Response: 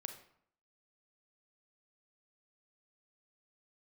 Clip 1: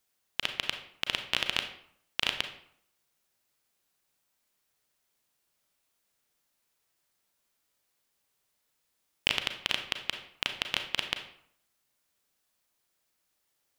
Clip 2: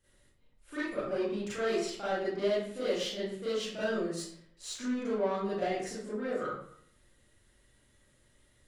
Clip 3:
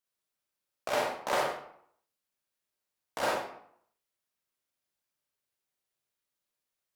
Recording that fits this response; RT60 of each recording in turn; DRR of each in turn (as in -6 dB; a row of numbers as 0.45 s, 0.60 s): 1; 0.65 s, 0.65 s, 0.65 s; 6.0 dB, -12.0 dB, -3.0 dB